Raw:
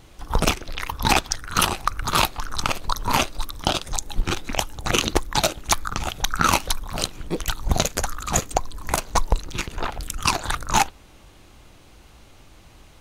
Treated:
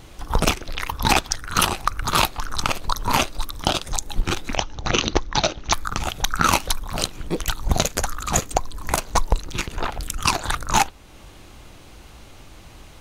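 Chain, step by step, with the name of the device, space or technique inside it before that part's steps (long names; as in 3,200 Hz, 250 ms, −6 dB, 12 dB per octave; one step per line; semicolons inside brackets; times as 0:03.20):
parallel compression (in parallel at −2 dB: downward compressor, threshold −36 dBFS, peak gain reduction 22 dB)
0:04.56–0:05.73: on the sum: Chebyshev low-pass filter 6,200 Hz, order 5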